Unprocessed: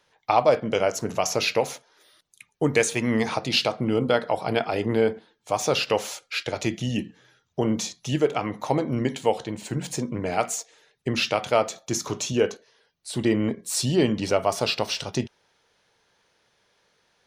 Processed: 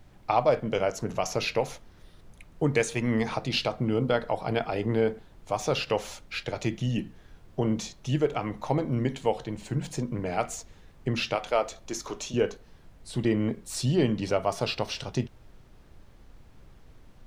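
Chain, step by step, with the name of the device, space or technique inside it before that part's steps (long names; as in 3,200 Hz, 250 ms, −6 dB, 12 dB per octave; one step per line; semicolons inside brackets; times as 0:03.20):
0:11.35–0:12.34: high-pass filter 320 Hz 12 dB per octave
car interior (parametric band 130 Hz +5 dB 0.89 octaves; high-shelf EQ 5,000 Hz −6.5 dB; brown noise bed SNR 20 dB)
level −4 dB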